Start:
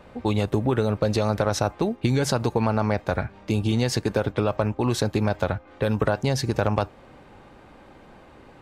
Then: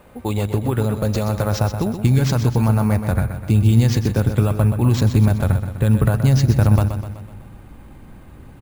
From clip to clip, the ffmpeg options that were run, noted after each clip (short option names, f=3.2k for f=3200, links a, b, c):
-af "aecho=1:1:126|252|378|504|630|756:0.355|0.192|0.103|0.0559|0.0302|0.0163,asubboost=boost=5:cutoff=210,acrusher=samples=4:mix=1:aa=0.000001"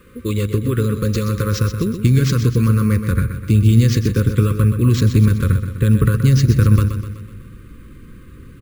-af "asuperstop=centerf=750:order=12:qfactor=1.4,volume=2dB"